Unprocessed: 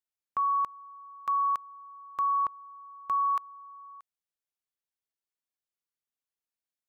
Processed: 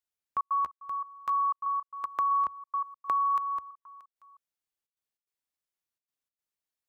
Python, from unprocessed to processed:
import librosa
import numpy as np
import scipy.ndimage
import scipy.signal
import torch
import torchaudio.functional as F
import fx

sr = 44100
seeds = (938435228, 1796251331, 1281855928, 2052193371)

y = fx.reverse_delay(x, sr, ms=257, wet_db=-8)
y = fx.peak_eq(y, sr, hz=70.0, db=5.5, octaves=0.35)
y = fx.step_gate(y, sr, bpm=148, pattern='xxxx.xx.xxx', floor_db=-60.0, edge_ms=4.5)
y = fx.band_squash(y, sr, depth_pct=70, at=(1.66, 3.71))